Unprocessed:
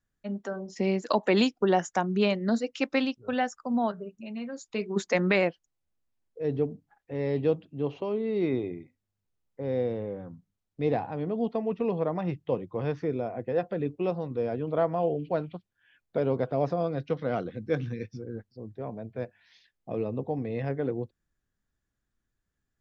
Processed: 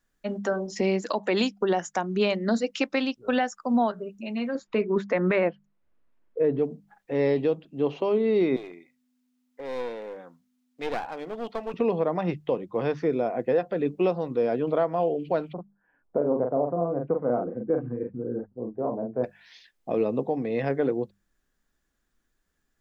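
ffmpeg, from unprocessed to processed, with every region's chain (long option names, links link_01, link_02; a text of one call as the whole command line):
ffmpeg -i in.wav -filter_complex "[0:a]asettb=1/sr,asplit=3[link_01][link_02][link_03];[link_01]atrim=end=4.554[link_04];[link_02]atrim=start=4.55:end=6.59,asetpts=PTS-STARTPTS,afade=type=in:duration=0.004:curve=qsin,afade=type=out:start_time=2.036:duration=0.004:curve=qsin,lowpass=1900,bandreject=frequency=780:width=8.7,acontrast=31[link_05];[link_03]atrim=start=6.586[link_06];[link_04][link_05]acrossfade=duration=0.004:curve1=hsin:curve2=qsin[link_07];[link_07][link_06]acrossfade=duration=0.004:curve1=qsin:curve2=hsin,asettb=1/sr,asplit=3[link_08][link_09][link_10];[link_08]atrim=end=8.564[link_11];[link_09]atrim=start=8.56:end=11.74,asetpts=PTS-STARTPTS,afade=type=in:duration=0.004:curve=qsin,afade=type=out:start_time=3.176:duration=0.004:curve=qsin,aeval=exprs='val(0)+0.00398*(sin(2*PI*50*n/s)+sin(2*PI*2*50*n/s)/2+sin(2*PI*3*50*n/s)/3+sin(2*PI*4*50*n/s)/4+sin(2*PI*5*50*n/s)/5)':channel_layout=same,highpass=frequency=1300:poles=1,aeval=exprs='clip(val(0),-1,0.00708)':channel_layout=same[link_12];[link_10]atrim=start=11.736[link_13];[link_11][link_12]acrossfade=duration=0.004:curve1=hsin:curve2=qsin[link_14];[link_14][link_13]acrossfade=duration=0.004:curve1=qsin:curve2=hsin,asettb=1/sr,asplit=3[link_15][link_16][link_17];[link_15]atrim=end=15.534[link_18];[link_16]atrim=start=15.53:end=19.24,asetpts=PTS-STARTPTS,afade=type=in:duration=0.004:curve=qsin,afade=type=out:start_time=3.706:duration=0.004:curve=qsin,lowpass=frequency=1100:width=0.5412,lowpass=frequency=1100:width=1.3066,asplit=2[link_19][link_20];[link_20]adelay=41,volume=-4dB[link_21];[link_19][link_21]amix=inputs=2:normalize=0,atrim=end_sample=163611[link_22];[link_17]atrim=start=19.236[link_23];[link_18][link_22]acrossfade=duration=0.004:curve1=hsin:curve2=qsin[link_24];[link_24][link_23]acrossfade=duration=0.004:curve1=qsin:curve2=hsin,equalizer=frequency=100:width=1.4:gain=-13.5,bandreject=frequency=50:width_type=h:width=6,bandreject=frequency=100:width_type=h:width=6,bandreject=frequency=150:width_type=h:width=6,bandreject=frequency=200:width_type=h:width=6,alimiter=limit=-23dB:level=0:latency=1:release=499,volume=8.5dB" out.wav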